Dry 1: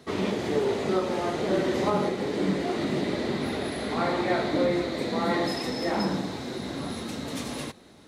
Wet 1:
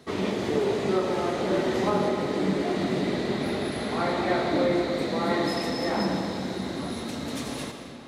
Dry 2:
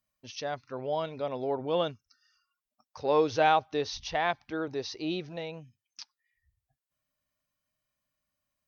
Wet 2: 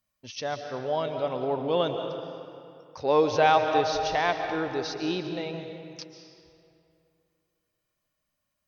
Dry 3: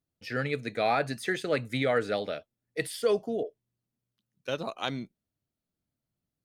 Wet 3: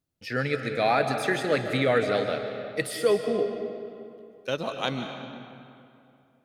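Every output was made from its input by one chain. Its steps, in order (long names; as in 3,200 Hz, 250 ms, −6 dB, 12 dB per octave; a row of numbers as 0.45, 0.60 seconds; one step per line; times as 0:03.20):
comb and all-pass reverb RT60 2.6 s, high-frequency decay 0.7×, pre-delay 100 ms, DRR 5.5 dB
loudness normalisation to −27 LKFS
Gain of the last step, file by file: −0.5, +3.0, +3.0 decibels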